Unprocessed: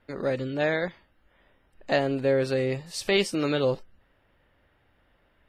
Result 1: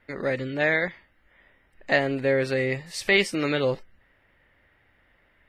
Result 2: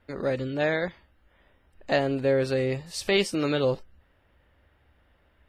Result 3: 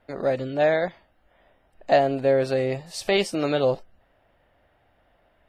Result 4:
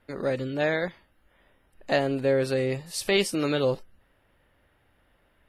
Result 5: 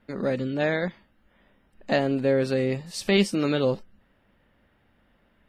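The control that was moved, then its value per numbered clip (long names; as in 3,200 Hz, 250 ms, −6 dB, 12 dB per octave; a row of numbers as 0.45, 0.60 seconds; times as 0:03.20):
parametric band, centre frequency: 2,000, 69, 690, 11,000, 210 Hertz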